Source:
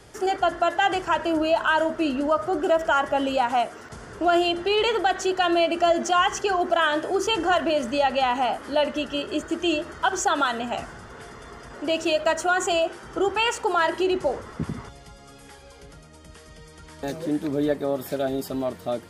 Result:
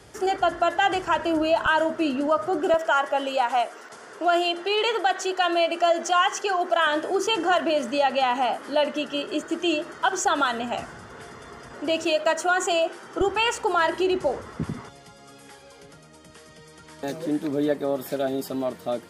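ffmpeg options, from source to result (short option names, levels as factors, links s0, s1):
-af "asetnsamples=n=441:p=0,asendcmd='1.66 highpass f 120;2.74 highpass f 400;6.87 highpass f 190;10.25 highpass f 80;12.05 highpass f 230;13.21 highpass f 60;14.75 highpass f 140',highpass=44"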